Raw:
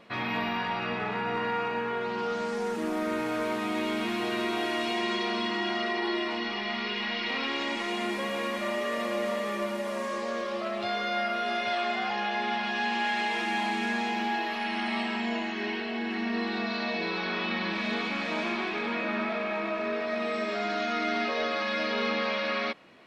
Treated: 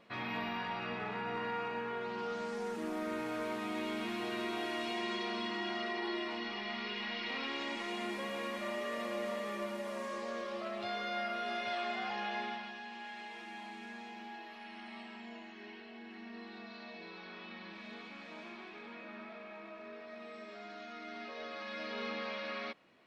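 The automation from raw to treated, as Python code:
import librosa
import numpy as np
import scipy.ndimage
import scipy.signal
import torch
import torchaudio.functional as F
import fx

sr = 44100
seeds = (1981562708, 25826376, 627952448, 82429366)

y = fx.gain(x, sr, db=fx.line((12.39, -8.0), (12.82, -18.0), (21.01, -18.0), (22.03, -11.0)))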